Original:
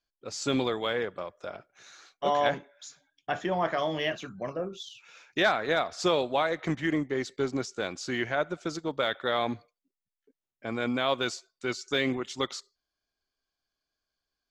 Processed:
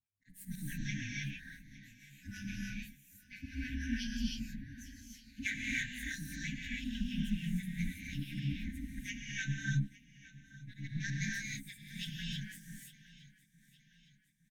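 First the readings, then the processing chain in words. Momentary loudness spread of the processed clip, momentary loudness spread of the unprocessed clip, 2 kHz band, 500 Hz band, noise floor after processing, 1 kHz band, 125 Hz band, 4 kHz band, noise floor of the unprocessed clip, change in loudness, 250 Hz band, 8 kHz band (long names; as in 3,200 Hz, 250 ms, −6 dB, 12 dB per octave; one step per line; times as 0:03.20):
17 LU, 14 LU, −7.5 dB, below −40 dB, −68 dBFS, below −40 dB, +1.5 dB, −11.0 dB, below −85 dBFS, −10.0 dB, −6.5 dB, −4.5 dB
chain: partials spread apart or drawn together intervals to 122%
high-shelf EQ 2,600 Hz −11.5 dB
ring modulation 100 Hz
volume swells 106 ms
two-band tremolo in antiphase 6.1 Hz, depth 100%, crossover 900 Hz
linear-phase brick-wall band-stop 280–1,500 Hz
repeating echo 862 ms, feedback 46%, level −19 dB
reverb whose tail is shaped and stops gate 340 ms rising, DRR −3.5 dB
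level +5 dB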